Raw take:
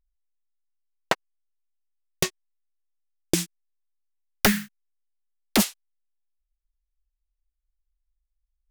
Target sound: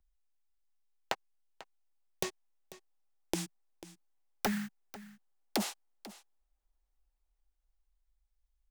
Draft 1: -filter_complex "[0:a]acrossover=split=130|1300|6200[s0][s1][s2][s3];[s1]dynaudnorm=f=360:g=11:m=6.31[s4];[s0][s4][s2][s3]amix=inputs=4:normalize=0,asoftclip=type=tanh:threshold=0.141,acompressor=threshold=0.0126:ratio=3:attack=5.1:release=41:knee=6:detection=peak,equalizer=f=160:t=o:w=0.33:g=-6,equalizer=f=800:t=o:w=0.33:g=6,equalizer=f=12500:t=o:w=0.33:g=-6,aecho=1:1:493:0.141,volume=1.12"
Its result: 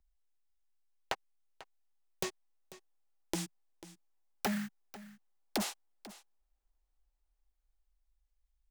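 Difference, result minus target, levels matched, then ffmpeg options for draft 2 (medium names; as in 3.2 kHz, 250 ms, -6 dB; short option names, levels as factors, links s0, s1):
saturation: distortion +11 dB
-filter_complex "[0:a]acrossover=split=130|1300|6200[s0][s1][s2][s3];[s1]dynaudnorm=f=360:g=11:m=6.31[s4];[s0][s4][s2][s3]amix=inputs=4:normalize=0,asoftclip=type=tanh:threshold=0.531,acompressor=threshold=0.0126:ratio=3:attack=5.1:release=41:knee=6:detection=peak,equalizer=f=160:t=o:w=0.33:g=-6,equalizer=f=800:t=o:w=0.33:g=6,equalizer=f=12500:t=o:w=0.33:g=-6,aecho=1:1:493:0.141,volume=1.12"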